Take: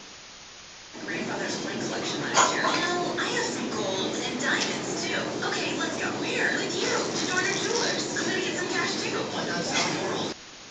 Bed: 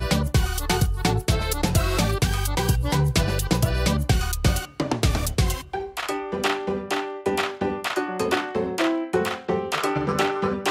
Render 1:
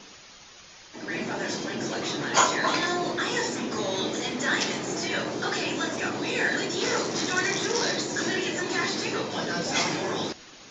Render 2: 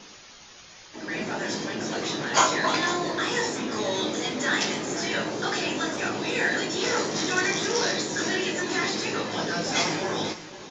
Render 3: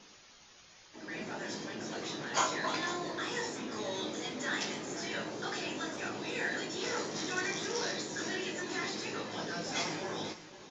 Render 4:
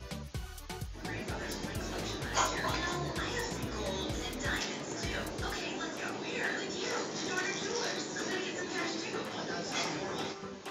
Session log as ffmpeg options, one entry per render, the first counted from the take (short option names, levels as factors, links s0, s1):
-af "afftdn=nr=6:nf=-45"
-filter_complex "[0:a]asplit=2[s0][s1];[s1]adelay=19,volume=0.447[s2];[s0][s2]amix=inputs=2:normalize=0,aecho=1:1:497:0.178"
-af "volume=0.316"
-filter_complex "[1:a]volume=0.1[s0];[0:a][s0]amix=inputs=2:normalize=0"